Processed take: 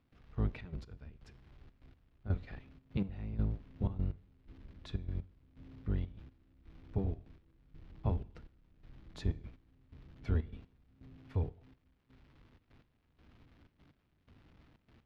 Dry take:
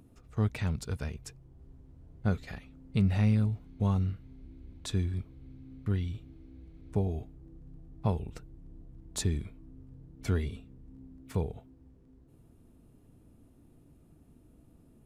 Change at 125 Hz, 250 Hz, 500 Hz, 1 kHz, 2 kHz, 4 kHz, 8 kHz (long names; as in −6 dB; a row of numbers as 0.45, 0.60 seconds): −7.0 dB, −8.5 dB, −7.5 dB, −9.0 dB, −10.5 dB, −12.0 dB, below −25 dB